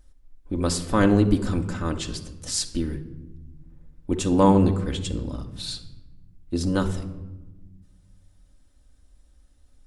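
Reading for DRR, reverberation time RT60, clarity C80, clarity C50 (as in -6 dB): 4.0 dB, 1.1 s, 15.0 dB, 11.5 dB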